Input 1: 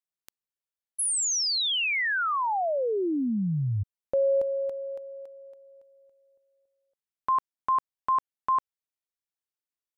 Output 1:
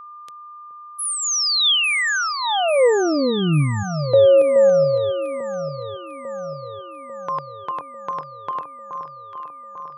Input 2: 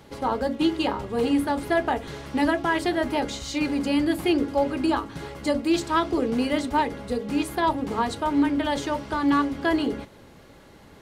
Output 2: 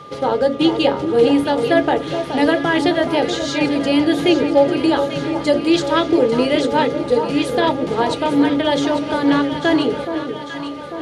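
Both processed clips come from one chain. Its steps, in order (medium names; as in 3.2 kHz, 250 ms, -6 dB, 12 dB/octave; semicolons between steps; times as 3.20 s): cabinet simulation 120–9800 Hz, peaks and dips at 150 Hz +7 dB, 220 Hz -5 dB, 500 Hz +8 dB, 1.1 kHz -9 dB, 3.4 kHz +5 dB, 7.9 kHz -6 dB; echo whose repeats swap between lows and highs 423 ms, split 1.2 kHz, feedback 76%, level -7.5 dB; whistle 1.2 kHz -43 dBFS; trim +6.5 dB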